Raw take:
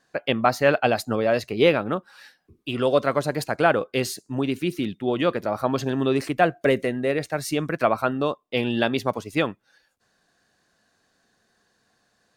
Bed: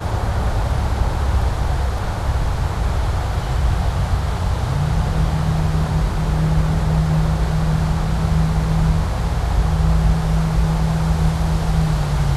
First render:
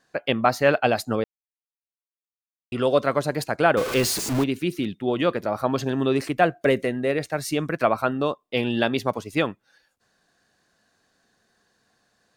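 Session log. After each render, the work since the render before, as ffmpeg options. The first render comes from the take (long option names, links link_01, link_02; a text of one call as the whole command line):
ffmpeg -i in.wav -filter_complex "[0:a]asettb=1/sr,asplit=3[link_01][link_02][link_03];[link_01]atrim=end=3.774[link_04];[link_02]atrim=start=3.77:end=4.44,asetpts=PTS-STARTPTS,afade=type=in:duration=0.004:curve=qsin,afade=type=out:start_time=0.666:duration=0.004:curve=qsin,aeval=exprs='val(0)+0.5*0.0708*sgn(val(0))':channel_layout=same[link_05];[link_03]atrim=start=4.436[link_06];[link_04][link_05]acrossfade=duration=0.004:curve1=hsin:curve2=qsin[link_07];[link_07][link_06]acrossfade=duration=0.004:curve1=qsin:curve2=hsin,asplit=3[link_08][link_09][link_10];[link_08]atrim=end=1.24,asetpts=PTS-STARTPTS,afade=type=out:start_time=1.236:duration=0.004:curve=hsin[link_11];[link_09]atrim=start=1.24:end=2.72,asetpts=PTS-STARTPTS,volume=0[link_12];[link_10]atrim=start=2.72,asetpts=PTS-STARTPTS,afade=type=in:duration=0.004:curve=hsin[link_13];[link_11][link_12][link_13]concat=n=3:v=0:a=1" out.wav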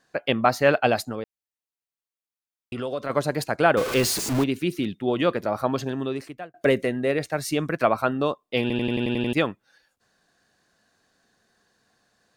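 ffmpeg -i in.wav -filter_complex "[0:a]asplit=3[link_01][link_02][link_03];[link_01]afade=type=out:start_time=1.06:duration=0.02[link_04];[link_02]acompressor=threshold=-28dB:ratio=3:attack=3.2:release=140:knee=1:detection=peak,afade=type=in:start_time=1.06:duration=0.02,afade=type=out:start_time=3.09:duration=0.02[link_05];[link_03]afade=type=in:start_time=3.09:duration=0.02[link_06];[link_04][link_05][link_06]amix=inputs=3:normalize=0,asplit=10[link_07][link_08][link_09][link_10][link_11][link_12][link_13][link_14][link_15][link_16];[link_07]atrim=end=6.54,asetpts=PTS-STARTPTS,afade=type=out:start_time=5.59:duration=0.95[link_17];[link_08]atrim=start=6.54:end=8.702,asetpts=PTS-STARTPTS,afade=type=in:duration=0.004:curve=hsin[link_18];[link_09]atrim=start=8.608:end=8.702[link_19];[link_10]atrim=start=8.608:end=8.702[link_20];[link_11]atrim=start=8.608:end=8.702[link_21];[link_12]atrim=start=8.608:end=8.702[link_22];[link_13]atrim=start=8.608:end=8.702[link_23];[link_14]atrim=start=8.608:end=8.702[link_24];[link_15]atrim=start=8.608:end=8.702[link_25];[link_16]atrim=start=9.328[link_26];[link_17][link_18]concat=n=2:v=0:a=1[link_27];[link_27][link_19]acrossfade=duration=0.004:curve1=hsin:curve2=hsin[link_28];[link_28][link_20]acrossfade=duration=0.004:curve1=hsin:curve2=hsin[link_29];[link_29][link_21]acrossfade=duration=0.004:curve1=hsin:curve2=hsin[link_30];[link_30][link_22]acrossfade=duration=0.004:curve1=hsin:curve2=hsin[link_31];[link_31][link_23]acrossfade=duration=0.004:curve1=hsin:curve2=hsin[link_32];[link_32][link_24]acrossfade=duration=0.004:curve1=hsin:curve2=hsin[link_33];[link_33][link_25]acrossfade=duration=0.004:curve1=hsin:curve2=hsin[link_34];[link_34][link_26]acrossfade=duration=0.004:curve1=hsin:curve2=hsin" out.wav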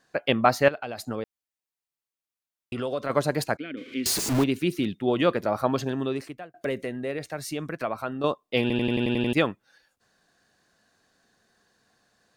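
ffmpeg -i in.wav -filter_complex "[0:a]asettb=1/sr,asplit=3[link_01][link_02][link_03];[link_01]atrim=end=0.684[link_04];[link_02]atrim=start=0.68:end=1.08,asetpts=PTS-STARTPTS,afade=type=in:duration=0.004:curve=qsin,afade=type=out:start_time=0.396:duration=0.004:curve=qsin,acompressor=threshold=-30dB:ratio=8:attack=3.2:release=140:knee=1:detection=peak[link_05];[link_03]atrim=start=1.076[link_06];[link_04][link_05]acrossfade=duration=0.004:curve1=hsin:curve2=qsin[link_07];[link_07][link_06]acrossfade=duration=0.004:curve1=qsin:curve2=hsin,asettb=1/sr,asplit=3[link_08][link_09][link_10];[link_08]atrim=end=3.574[link_11];[link_09]atrim=start=3.57:end=4.06,asetpts=PTS-STARTPTS,afade=type=in:duration=0.004:curve=qsin,afade=type=out:start_time=0.486:duration=0.004:curve=qsin,asplit=3[link_12][link_13][link_14];[link_12]bandpass=frequency=270:width_type=q:width=8,volume=0dB[link_15];[link_13]bandpass=frequency=2290:width_type=q:width=8,volume=-6dB[link_16];[link_14]bandpass=frequency=3010:width_type=q:width=8,volume=-9dB[link_17];[link_15][link_16][link_17]amix=inputs=3:normalize=0[link_18];[link_10]atrim=start=4.056[link_19];[link_11][link_18]acrossfade=duration=0.004:curve1=hsin:curve2=qsin[link_20];[link_20][link_19]acrossfade=duration=0.004:curve1=qsin:curve2=hsin,asettb=1/sr,asplit=3[link_21][link_22][link_23];[link_21]atrim=end=6.334[link_24];[link_22]atrim=start=6.33:end=8.24,asetpts=PTS-STARTPTS,afade=type=in:duration=0.004:curve=qsin,afade=type=out:start_time=1.906:duration=0.004:curve=qsin,acompressor=threshold=-40dB:ratio=1.5:attack=3.2:release=140:knee=1:detection=peak[link_25];[link_23]atrim=start=8.236[link_26];[link_24][link_25]acrossfade=duration=0.004:curve1=hsin:curve2=qsin[link_27];[link_27][link_26]acrossfade=duration=0.004:curve1=qsin:curve2=hsin" out.wav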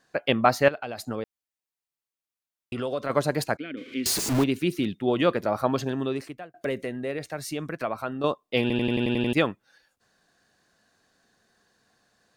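ffmpeg -i in.wav -af anull out.wav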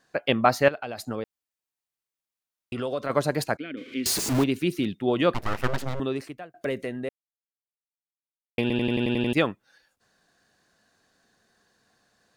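ffmpeg -i in.wav -filter_complex "[0:a]asettb=1/sr,asplit=3[link_01][link_02][link_03];[link_01]atrim=end=5.344[link_04];[link_02]atrim=start=5.34:end=6,asetpts=PTS-STARTPTS,afade=type=in:duration=0.004:curve=qsin,afade=type=out:start_time=0.656:duration=0.004:curve=qsin,aeval=exprs='abs(val(0))':channel_layout=same[link_05];[link_03]atrim=start=5.996[link_06];[link_04][link_05]acrossfade=duration=0.004:curve1=hsin:curve2=qsin[link_07];[link_07][link_06]acrossfade=duration=0.004:curve1=qsin:curve2=hsin,asplit=3[link_08][link_09][link_10];[link_08]atrim=end=7.09,asetpts=PTS-STARTPTS,afade=type=out:start_time=7.086:duration=0.004:curve=hsin[link_11];[link_09]atrim=start=7.09:end=8.58,asetpts=PTS-STARTPTS,volume=0[link_12];[link_10]atrim=start=8.58,asetpts=PTS-STARTPTS,afade=type=in:duration=0.004:curve=hsin[link_13];[link_11][link_12][link_13]concat=n=3:v=0:a=1" out.wav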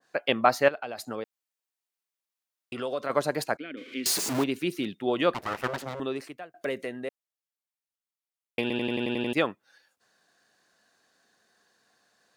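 ffmpeg -i in.wav -af "highpass=frequency=370:poles=1,adynamicequalizer=threshold=0.0126:dfrequency=1600:dqfactor=0.7:tfrequency=1600:tqfactor=0.7:attack=5:release=100:ratio=0.375:range=1.5:mode=cutabove:tftype=highshelf" out.wav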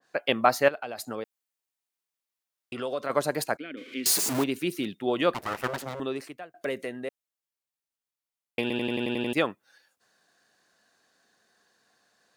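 ffmpeg -i in.wav -af "adynamicequalizer=threshold=0.00501:dfrequency=7100:dqfactor=0.7:tfrequency=7100:tqfactor=0.7:attack=5:release=100:ratio=0.375:range=3:mode=boostabove:tftype=highshelf" out.wav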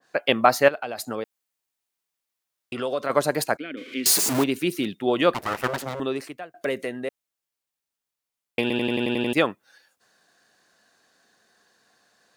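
ffmpeg -i in.wav -af "volume=4.5dB,alimiter=limit=-2dB:level=0:latency=1" out.wav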